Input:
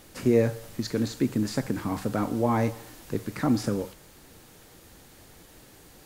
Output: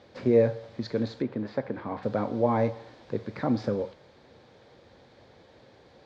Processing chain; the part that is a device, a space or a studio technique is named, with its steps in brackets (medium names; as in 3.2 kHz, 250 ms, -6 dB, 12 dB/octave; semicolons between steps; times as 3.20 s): guitar cabinet (cabinet simulation 100–4000 Hz, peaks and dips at 170 Hz -6 dB, 300 Hz -6 dB, 540 Hz +6 dB, 1.3 kHz -5 dB, 1.9 kHz -3 dB, 2.8 kHz -9 dB); 1.22–2.03 s: tone controls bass -6 dB, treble -15 dB